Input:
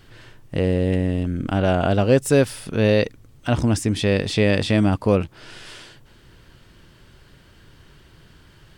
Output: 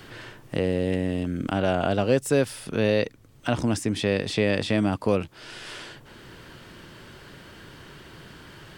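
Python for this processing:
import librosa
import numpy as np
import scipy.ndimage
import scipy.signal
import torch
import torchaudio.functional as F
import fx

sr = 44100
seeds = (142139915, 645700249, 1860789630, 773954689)

y = fx.low_shelf(x, sr, hz=97.0, db=-11.5)
y = fx.band_squash(y, sr, depth_pct=40)
y = F.gain(torch.from_numpy(y), -3.0).numpy()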